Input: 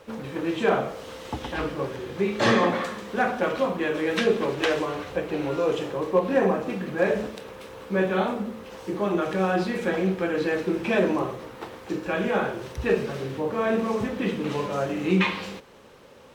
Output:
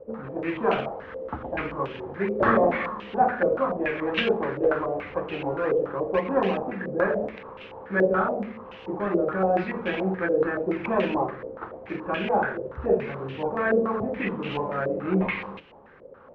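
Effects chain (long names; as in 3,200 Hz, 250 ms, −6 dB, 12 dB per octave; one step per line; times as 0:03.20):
mains-hum notches 60/120/180/240/300/360/420/480 Hz
in parallel at −11 dB: sample-and-hold swept by an LFO 37×, swing 60% 3.8 Hz
on the sum: high-frequency loss of the air 59 metres
low-pass on a step sequencer 7 Hz 520–2,800 Hz
level −4 dB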